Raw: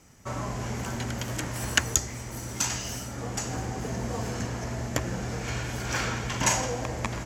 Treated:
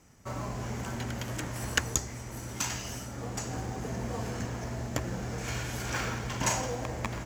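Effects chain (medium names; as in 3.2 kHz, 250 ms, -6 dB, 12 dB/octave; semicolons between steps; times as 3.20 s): 5.38–5.90 s: treble shelf 4.8 kHz +7.5 dB; in parallel at -9.5 dB: decimation with a swept rate 9×, swing 100% 0.66 Hz; on the sum: trim -5.5 dB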